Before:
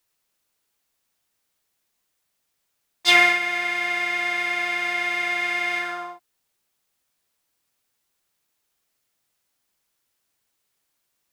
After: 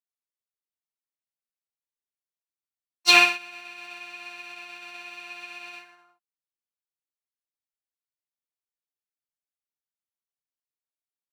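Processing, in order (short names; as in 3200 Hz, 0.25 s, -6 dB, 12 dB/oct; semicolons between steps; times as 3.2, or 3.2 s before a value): formant shift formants +3 st; upward expander 2.5:1, over -32 dBFS; gain +1 dB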